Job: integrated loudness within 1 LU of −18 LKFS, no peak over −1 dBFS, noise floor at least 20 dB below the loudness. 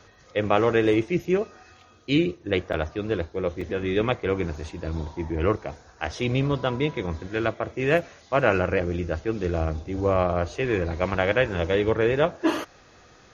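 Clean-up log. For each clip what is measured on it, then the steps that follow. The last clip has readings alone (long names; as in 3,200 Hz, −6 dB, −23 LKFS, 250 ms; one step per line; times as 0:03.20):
number of dropouts 2; longest dropout 4.3 ms; integrated loudness −25.5 LKFS; sample peak −4.5 dBFS; target loudness −18.0 LKFS
→ repair the gap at 0:02.73/0:03.61, 4.3 ms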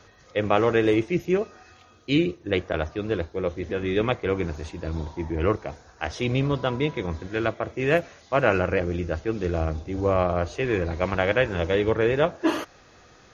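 number of dropouts 0; integrated loudness −25.5 LKFS; sample peak −4.5 dBFS; target loudness −18.0 LKFS
→ level +7.5 dB
brickwall limiter −1 dBFS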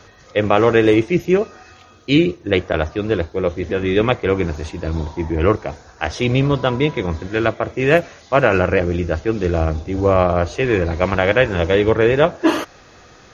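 integrated loudness −18.0 LKFS; sample peak −1.0 dBFS; background noise floor −46 dBFS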